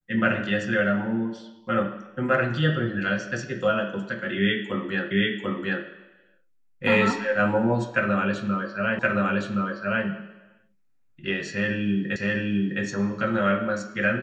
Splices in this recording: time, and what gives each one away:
5.11 s: repeat of the last 0.74 s
8.99 s: repeat of the last 1.07 s
12.16 s: repeat of the last 0.66 s

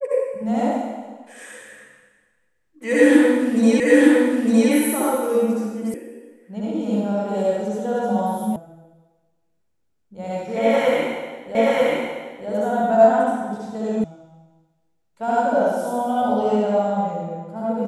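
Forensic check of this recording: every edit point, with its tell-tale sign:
3.80 s: repeat of the last 0.91 s
5.94 s: sound stops dead
8.56 s: sound stops dead
11.55 s: repeat of the last 0.93 s
14.04 s: sound stops dead

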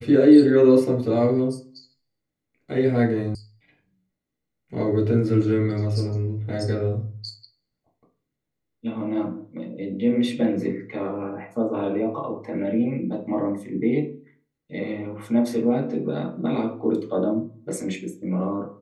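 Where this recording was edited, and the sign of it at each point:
3.35 s: sound stops dead

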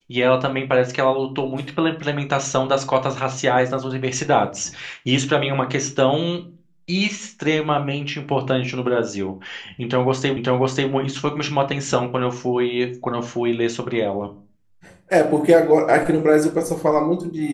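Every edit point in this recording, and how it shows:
10.37 s: repeat of the last 0.54 s

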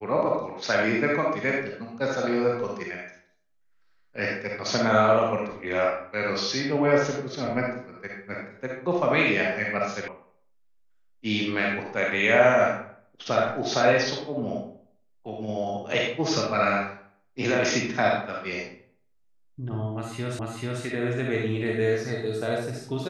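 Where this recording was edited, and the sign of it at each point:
10.08 s: sound stops dead
20.39 s: repeat of the last 0.44 s

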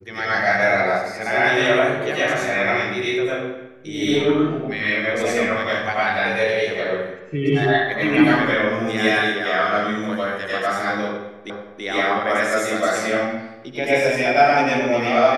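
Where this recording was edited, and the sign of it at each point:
11.50 s: repeat of the last 0.33 s

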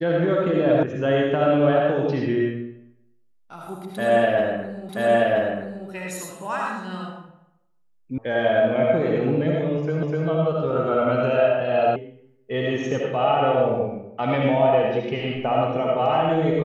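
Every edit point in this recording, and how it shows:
0.83 s: sound stops dead
4.89 s: repeat of the last 0.98 s
8.18 s: sound stops dead
10.03 s: repeat of the last 0.25 s
11.96 s: sound stops dead

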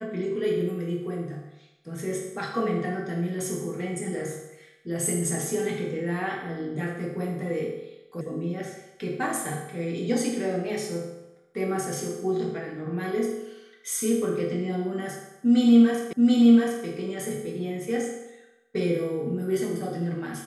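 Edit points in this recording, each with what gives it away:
8.21 s: sound stops dead
16.13 s: repeat of the last 0.73 s

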